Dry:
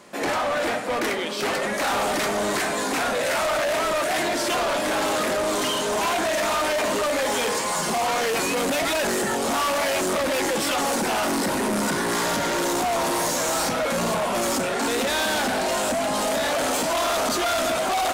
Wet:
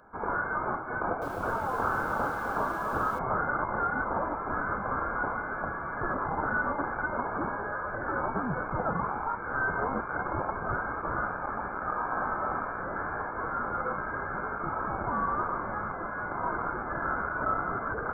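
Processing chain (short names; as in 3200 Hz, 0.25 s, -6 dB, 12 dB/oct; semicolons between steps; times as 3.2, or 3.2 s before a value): HPF 1100 Hz 24 dB/oct; inverted band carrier 2700 Hz; Butterworth band-stop 1900 Hz, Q 2.7; 0.96–3.19 lo-fi delay 0.257 s, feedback 35%, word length 8-bit, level -5.5 dB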